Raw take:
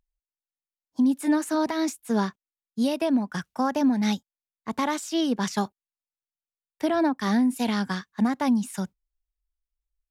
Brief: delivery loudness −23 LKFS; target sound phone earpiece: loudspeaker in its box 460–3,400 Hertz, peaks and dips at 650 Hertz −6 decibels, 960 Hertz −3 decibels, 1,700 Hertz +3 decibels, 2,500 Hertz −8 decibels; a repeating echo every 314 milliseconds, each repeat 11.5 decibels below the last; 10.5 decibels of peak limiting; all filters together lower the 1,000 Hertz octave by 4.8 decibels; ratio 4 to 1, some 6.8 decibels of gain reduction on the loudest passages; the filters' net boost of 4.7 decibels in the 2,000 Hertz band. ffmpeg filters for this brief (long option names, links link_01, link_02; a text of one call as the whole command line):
ffmpeg -i in.wav -af "equalizer=frequency=1000:width_type=o:gain=-4,equalizer=frequency=2000:width_type=o:gain=6.5,acompressor=threshold=-26dB:ratio=4,alimiter=level_in=3.5dB:limit=-24dB:level=0:latency=1,volume=-3.5dB,highpass=460,equalizer=frequency=650:width_type=q:width=4:gain=-6,equalizer=frequency=960:width_type=q:width=4:gain=-3,equalizer=frequency=1700:width_type=q:width=4:gain=3,equalizer=frequency=2500:width_type=q:width=4:gain=-8,lowpass=frequency=3400:width=0.5412,lowpass=frequency=3400:width=1.3066,aecho=1:1:314|628|942:0.266|0.0718|0.0194,volume=19.5dB" out.wav